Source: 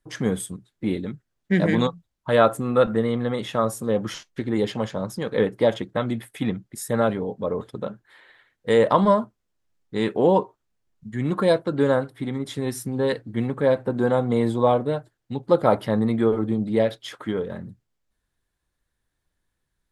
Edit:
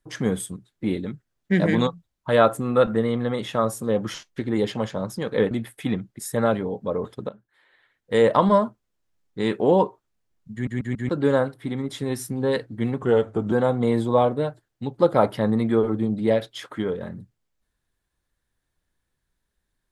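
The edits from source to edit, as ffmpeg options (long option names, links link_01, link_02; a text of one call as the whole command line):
ffmpeg -i in.wav -filter_complex "[0:a]asplit=9[link_01][link_02][link_03][link_04][link_05][link_06][link_07][link_08][link_09];[link_01]atrim=end=5.512[link_10];[link_02]atrim=start=6.068:end=7.85,asetpts=PTS-STARTPTS,afade=type=out:start_time=1.778:duration=0.004:curve=hsin:silence=0.223872[link_11];[link_03]atrim=start=7.85:end=11.232,asetpts=PTS-STARTPTS,afade=type=in:duration=0.92:curve=qua:silence=0.223872[link_12];[link_04]atrim=start=11.088:end=11.232[link_13];[link_05]atrim=start=11.088:end=11.232[link_14];[link_06]atrim=start=11.088:end=11.232[link_15];[link_07]atrim=start=11.648:end=13.584[link_16];[link_08]atrim=start=13.58:end=14.01,asetpts=PTS-STARTPTS,asetrate=37926,aresample=44100[link_17];[link_09]atrim=start=14.006[link_18];[link_11][link_12]concat=n=2:v=0:a=1[link_19];[link_10][link_19]acrossfade=duration=0.004:curve1=hsin:curve2=hsin[link_20];[link_20][link_13]acrossfade=duration=0.004:curve1=hsin:curve2=hsin[link_21];[link_21][link_14]acrossfade=duration=0.004:curve1=hsin:curve2=hsin[link_22];[link_22][link_15]acrossfade=duration=0.004:curve1=hsin:curve2=hsin[link_23];[link_23][link_16]acrossfade=duration=0.004:curve1=hsin:curve2=hsin[link_24];[link_24][link_17]acrossfade=duration=0.004:curve1=hsin:curve2=hsin[link_25];[link_25][link_18]acrossfade=duration=0.004:curve1=hsin:curve2=hsin" out.wav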